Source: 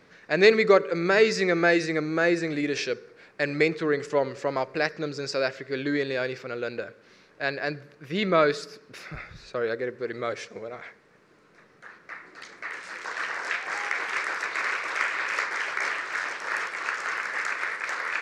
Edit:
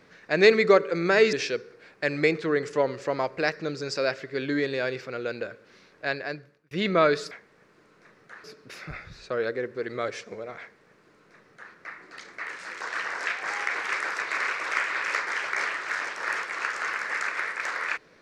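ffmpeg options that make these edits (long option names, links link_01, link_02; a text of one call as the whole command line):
ffmpeg -i in.wav -filter_complex "[0:a]asplit=5[link_01][link_02][link_03][link_04][link_05];[link_01]atrim=end=1.332[link_06];[link_02]atrim=start=2.698:end=8.08,asetpts=PTS-STARTPTS,afade=type=out:start_time=4.732:duration=0.65[link_07];[link_03]atrim=start=8.08:end=8.682,asetpts=PTS-STARTPTS,afade=type=in:duration=0.004:curve=hsin[link_08];[link_04]atrim=start=10.838:end=11.972[link_09];[link_05]atrim=start=8.678[link_10];[link_07][link_08]concat=n=2:v=0:a=1[link_11];[link_06][link_11]acrossfade=duration=0.004:curve1=hsin:curve2=hsin[link_12];[link_12][link_09]acrossfade=duration=0.004:curve1=hsin:curve2=hsin[link_13];[link_13][link_10]acrossfade=duration=0.004:curve1=hsin:curve2=hsin" out.wav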